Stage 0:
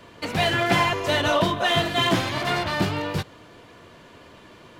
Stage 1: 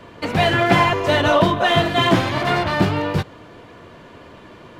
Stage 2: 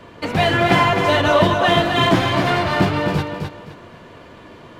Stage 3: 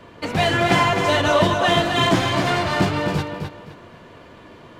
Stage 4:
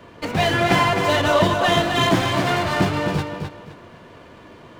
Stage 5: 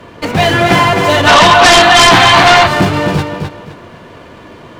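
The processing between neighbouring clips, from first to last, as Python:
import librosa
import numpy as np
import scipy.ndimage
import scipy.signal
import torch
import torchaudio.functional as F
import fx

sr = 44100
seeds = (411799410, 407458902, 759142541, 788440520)

y1 = fx.high_shelf(x, sr, hz=3000.0, db=-9.0)
y1 = y1 * librosa.db_to_amplitude(6.5)
y2 = fx.echo_feedback(y1, sr, ms=260, feedback_pct=26, wet_db=-6)
y3 = fx.dynamic_eq(y2, sr, hz=7300.0, q=0.95, threshold_db=-41.0, ratio=4.0, max_db=7)
y3 = y3 * librosa.db_to_amplitude(-2.5)
y4 = fx.running_max(y3, sr, window=3)
y5 = fx.spec_box(y4, sr, start_s=1.27, length_s=1.4, low_hz=680.0, high_hz=4700.0, gain_db=11)
y5 = fx.fold_sine(y5, sr, drive_db=10, ceiling_db=3.0)
y5 = y5 * librosa.db_to_amplitude(-4.5)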